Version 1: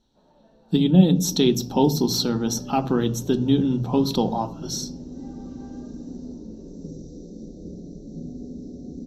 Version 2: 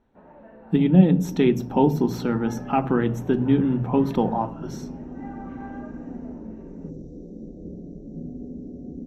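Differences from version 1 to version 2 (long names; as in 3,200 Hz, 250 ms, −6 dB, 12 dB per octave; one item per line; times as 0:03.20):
first sound +10.0 dB
master: add high shelf with overshoot 3,000 Hz −12.5 dB, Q 3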